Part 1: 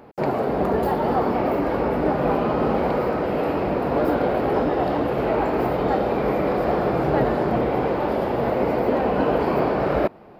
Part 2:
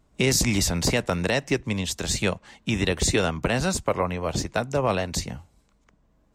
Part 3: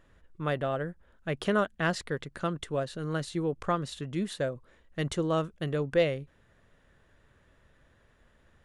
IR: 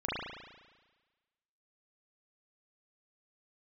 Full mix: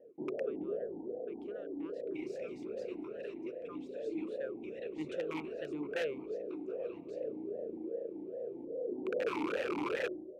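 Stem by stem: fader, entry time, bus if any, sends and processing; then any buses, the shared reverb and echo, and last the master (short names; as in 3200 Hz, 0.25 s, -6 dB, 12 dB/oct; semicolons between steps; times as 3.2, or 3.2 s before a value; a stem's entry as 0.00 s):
-2.0 dB, 0.00 s, send -17 dB, elliptic low-pass 650 Hz, stop band 60 dB; auto duck -22 dB, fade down 1.90 s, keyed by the third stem
-15.5 dB, 1.95 s, send -19 dB, whisperiser
4.02 s -13 dB -> 4.57 s -0.5 dB, 0.00 s, no send, high shelf 3300 Hz +5.5 dB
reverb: on, RT60 1.3 s, pre-delay 35 ms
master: wrapped overs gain 18.5 dB; vowel sweep e-u 2.5 Hz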